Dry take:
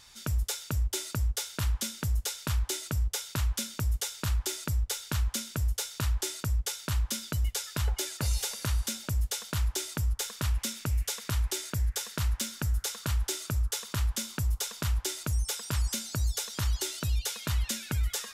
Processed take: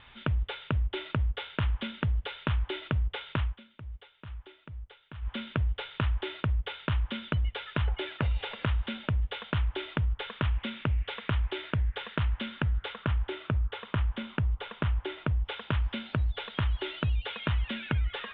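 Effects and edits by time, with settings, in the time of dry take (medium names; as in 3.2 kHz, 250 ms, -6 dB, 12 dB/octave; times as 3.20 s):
3.33–5.44 s: dip -19 dB, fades 0.23 s
12.93–15.45 s: treble shelf 3.4 kHz -9 dB
whole clip: steep low-pass 3.4 kHz 72 dB/octave; compression, threshold -31 dBFS; trim +6 dB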